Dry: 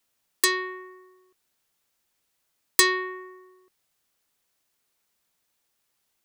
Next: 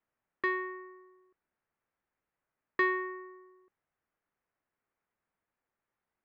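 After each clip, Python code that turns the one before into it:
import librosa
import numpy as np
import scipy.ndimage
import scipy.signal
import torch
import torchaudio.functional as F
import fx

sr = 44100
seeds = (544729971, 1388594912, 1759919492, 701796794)

y = scipy.signal.sosfilt(scipy.signal.butter(4, 2000.0, 'lowpass', fs=sr, output='sos'), x)
y = F.gain(torch.from_numpy(y), -4.5).numpy()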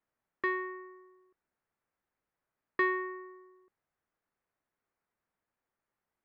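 y = fx.high_shelf(x, sr, hz=4100.0, db=-7.0)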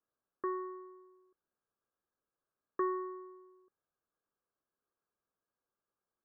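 y = scipy.signal.sosfilt(scipy.signal.cheby1(6, 6, 1700.0, 'lowpass', fs=sr, output='sos'), x)
y = F.gain(torch.from_numpy(y), -1.0).numpy()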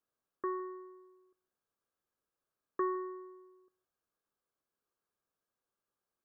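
y = x + 10.0 ** (-22.5 / 20.0) * np.pad(x, (int(160 * sr / 1000.0), 0))[:len(x)]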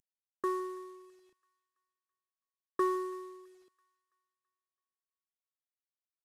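y = fx.cvsd(x, sr, bps=64000)
y = fx.echo_wet_highpass(y, sr, ms=331, feedback_pct=44, hz=1400.0, wet_db=-21.5)
y = F.gain(torch.from_numpy(y), 3.5).numpy()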